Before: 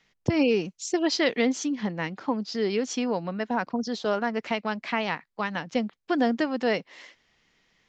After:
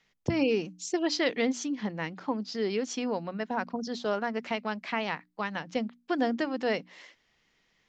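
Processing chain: notches 60/120/180/240/300 Hz; gain -3.5 dB

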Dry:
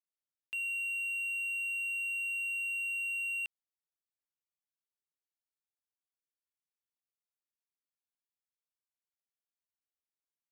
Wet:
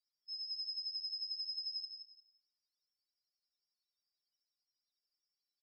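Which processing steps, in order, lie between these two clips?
switching spikes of -42 dBFS; rotary speaker horn 6 Hz; early reflections 63 ms -15 dB, 78 ms -13.5 dB; wide varispeed 1.87×; Chebyshev band-pass 2500–5600 Hz, order 5; feedback echo 0.175 s, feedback 26%, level -8.5 dB; loudest bins only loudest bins 4; reverb RT60 1.2 s, pre-delay 0.124 s, DRR 15 dB; gain -3.5 dB

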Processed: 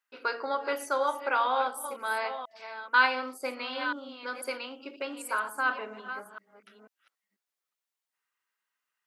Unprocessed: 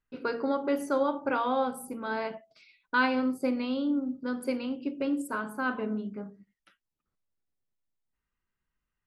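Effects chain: reverse delay 0.491 s, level -10.5 dB; HPF 820 Hz 12 dB/oct; gain +5 dB

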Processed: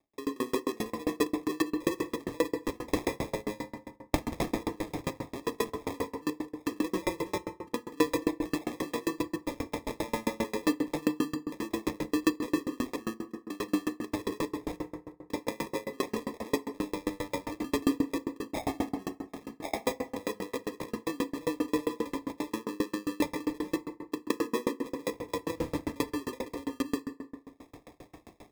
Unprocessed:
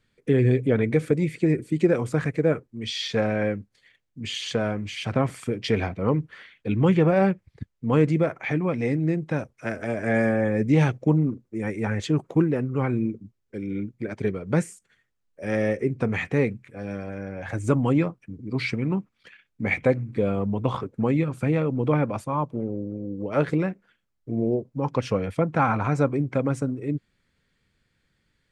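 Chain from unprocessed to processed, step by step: local time reversal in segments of 0.18 s; recorder AGC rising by 36 dB/s; HPF 210 Hz 12 dB/oct; low shelf 360 Hz -4 dB; fixed phaser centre 330 Hz, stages 4; sample-and-hold 30×; FDN reverb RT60 2 s, low-frequency decay 1×, high-frequency decay 0.4×, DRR 1.5 dB; dB-ramp tremolo decaying 7.5 Hz, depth 33 dB

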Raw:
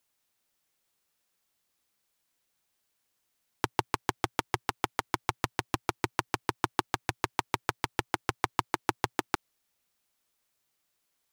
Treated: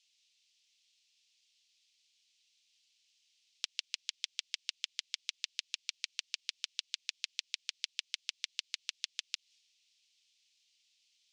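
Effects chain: limiter -13.5 dBFS, peak gain reduction 9 dB; steep high-pass 2600 Hz 36 dB/oct; compressor, threshold -52 dBFS, peak gain reduction 12 dB; transient shaper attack +9 dB, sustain +5 dB; LPF 5900 Hz 24 dB/oct; gain +12 dB

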